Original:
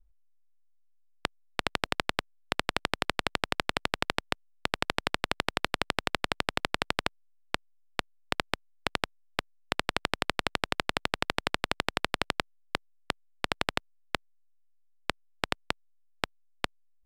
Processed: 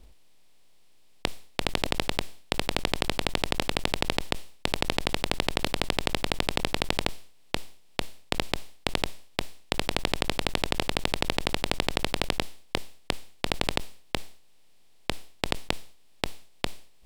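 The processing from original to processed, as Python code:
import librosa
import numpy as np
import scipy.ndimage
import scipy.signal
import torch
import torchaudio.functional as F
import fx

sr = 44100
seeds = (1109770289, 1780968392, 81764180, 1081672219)

y = fx.bin_compress(x, sr, power=0.6)
y = fx.peak_eq(y, sr, hz=1400.0, db=-10.0, octaves=1.0)
y = fx.sustainer(y, sr, db_per_s=110.0)
y = y * 10.0 ** (4.0 / 20.0)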